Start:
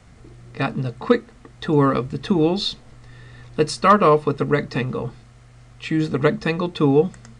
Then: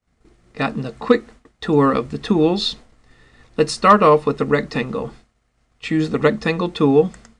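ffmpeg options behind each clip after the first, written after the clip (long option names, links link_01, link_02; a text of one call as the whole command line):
ffmpeg -i in.wav -af "agate=range=-33dB:threshold=-35dB:ratio=3:detection=peak,equalizer=frequency=120:width_type=o:width=0.33:gain=-12.5,volume=2.5dB" out.wav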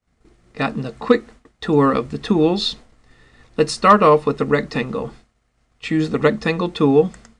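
ffmpeg -i in.wav -af anull out.wav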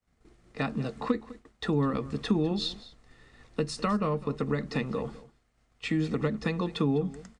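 ffmpeg -i in.wav -filter_complex "[0:a]acrossover=split=220[link_01][link_02];[link_02]acompressor=threshold=-23dB:ratio=10[link_03];[link_01][link_03]amix=inputs=2:normalize=0,aecho=1:1:203:0.119,volume=-5.5dB" out.wav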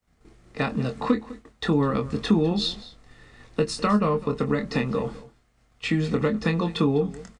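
ffmpeg -i in.wav -filter_complex "[0:a]asplit=2[link_01][link_02];[link_02]adelay=24,volume=-7dB[link_03];[link_01][link_03]amix=inputs=2:normalize=0,volume=5dB" out.wav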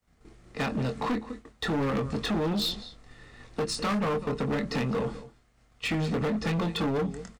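ffmpeg -i in.wav -af "volume=25dB,asoftclip=hard,volume=-25dB" out.wav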